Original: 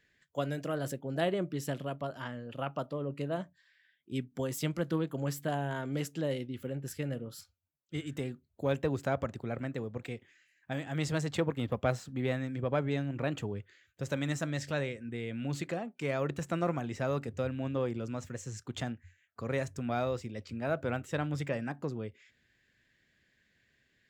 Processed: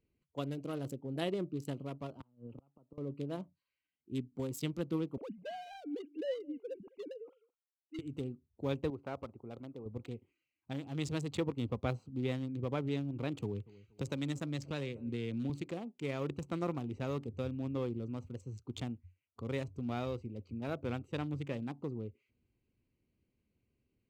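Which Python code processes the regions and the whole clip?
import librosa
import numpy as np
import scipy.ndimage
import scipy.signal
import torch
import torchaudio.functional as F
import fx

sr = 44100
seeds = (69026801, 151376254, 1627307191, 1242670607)

y = fx.chain(x, sr, fx.gate_flip(shuts_db=-30.0, range_db=-29),
    fx.air_absorb(metres=440.0),
    fx.band_squash(depth_pct=100), at=(2.2, 2.98))
y = fx.chain(y, sr, fx.sine_speech(),
    fx.peak_eq(hz=350.0, db=-14.5, octaves=0.22),
    fx.echo_single(ms=208, db=-24.0), at=(5.17, 7.99))
y = fx.chain(y, sr, fx.lowpass(hz=1700.0, slope=12),
    fx.low_shelf(hz=340.0, db=-11.5), at=(8.9, 9.86))
y = fx.chain(y, sr, fx.echo_feedback(ms=236, feedback_pct=18, wet_db=-24),
    fx.band_squash(depth_pct=70), at=(13.42, 15.5))
y = fx.wiener(y, sr, points=25)
y = fx.graphic_eq_15(y, sr, hz=(160, 630, 1600), db=(-5, -9, -9))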